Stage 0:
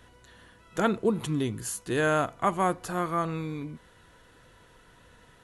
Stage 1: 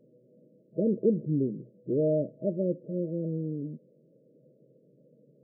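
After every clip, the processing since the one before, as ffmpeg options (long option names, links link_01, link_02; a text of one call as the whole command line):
ffmpeg -i in.wav -af "afftfilt=real='re*between(b*sr/4096,120,640)':imag='im*between(b*sr/4096,120,640)':win_size=4096:overlap=0.75,volume=1dB" out.wav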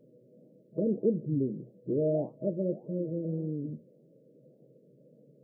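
ffmpeg -i in.wav -filter_complex "[0:a]asplit=2[link_01][link_02];[link_02]acompressor=threshold=-35dB:ratio=6,volume=-0.5dB[link_03];[link_01][link_03]amix=inputs=2:normalize=0,flanger=delay=6.6:depth=8.4:regen=-73:speed=1.7:shape=sinusoidal" out.wav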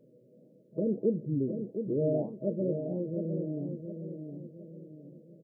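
ffmpeg -i in.wav -filter_complex "[0:a]asplit=2[link_01][link_02];[link_02]adelay=714,lowpass=frequency=860:poles=1,volume=-6.5dB,asplit=2[link_03][link_04];[link_04]adelay=714,lowpass=frequency=860:poles=1,volume=0.45,asplit=2[link_05][link_06];[link_06]adelay=714,lowpass=frequency=860:poles=1,volume=0.45,asplit=2[link_07][link_08];[link_08]adelay=714,lowpass=frequency=860:poles=1,volume=0.45,asplit=2[link_09][link_10];[link_10]adelay=714,lowpass=frequency=860:poles=1,volume=0.45[link_11];[link_01][link_03][link_05][link_07][link_09][link_11]amix=inputs=6:normalize=0,volume=-1dB" out.wav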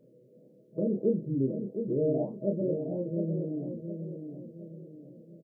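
ffmpeg -i in.wav -filter_complex "[0:a]asplit=2[link_01][link_02];[link_02]adelay=30,volume=-4dB[link_03];[link_01][link_03]amix=inputs=2:normalize=0" out.wav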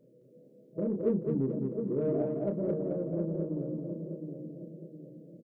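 ffmpeg -i in.wav -filter_complex "[0:a]asplit=2[link_01][link_02];[link_02]asoftclip=type=tanh:threshold=-28dB,volume=-8dB[link_03];[link_01][link_03]amix=inputs=2:normalize=0,aecho=1:1:215|430|645|860:0.631|0.221|0.0773|0.0271,volume=-4.5dB" out.wav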